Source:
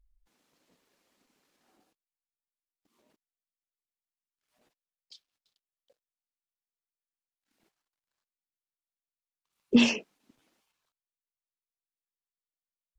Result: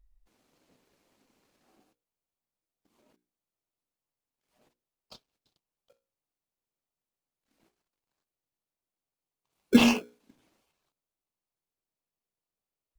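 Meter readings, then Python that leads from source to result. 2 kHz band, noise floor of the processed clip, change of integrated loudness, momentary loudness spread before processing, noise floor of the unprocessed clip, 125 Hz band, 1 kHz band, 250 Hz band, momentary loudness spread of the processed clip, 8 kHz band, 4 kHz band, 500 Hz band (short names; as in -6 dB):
+1.0 dB, under -85 dBFS, +1.5 dB, 8 LU, under -85 dBFS, +4.5 dB, +9.0 dB, +1.5 dB, 7 LU, n/a, 0.0 dB, +3.0 dB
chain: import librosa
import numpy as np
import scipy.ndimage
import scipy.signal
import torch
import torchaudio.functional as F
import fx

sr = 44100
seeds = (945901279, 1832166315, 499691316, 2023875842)

p1 = fx.hum_notches(x, sr, base_hz=60, count=9)
p2 = fx.sample_hold(p1, sr, seeds[0], rate_hz=1900.0, jitter_pct=0)
y = p1 + (p2 * 10.0 ** (-3.0 / 20.0))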